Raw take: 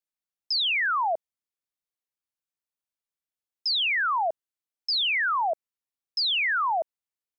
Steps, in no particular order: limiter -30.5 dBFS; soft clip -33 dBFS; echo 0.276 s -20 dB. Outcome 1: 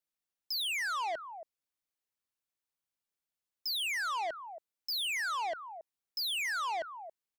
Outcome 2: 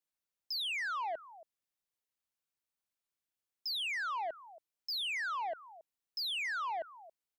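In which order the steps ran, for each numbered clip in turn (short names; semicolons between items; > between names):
echo > soft clip > limiter; limiter > echo > soft clip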